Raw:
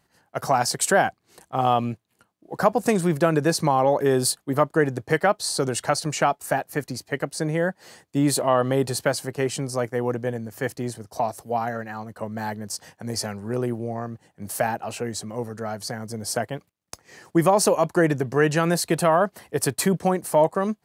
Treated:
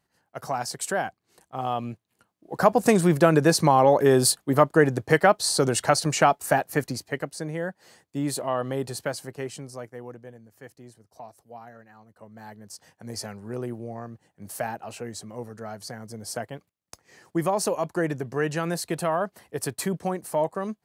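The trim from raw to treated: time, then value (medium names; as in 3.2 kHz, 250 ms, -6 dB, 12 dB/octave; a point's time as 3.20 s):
1.68 s -8 dB
2.82 s +2 dB
6.83 s +2 dB
7.44 s -7 dB
9.25 s -7 dB
10.38 s -18 dB
12.05 s -18 dB
13.15 s -6.5 dB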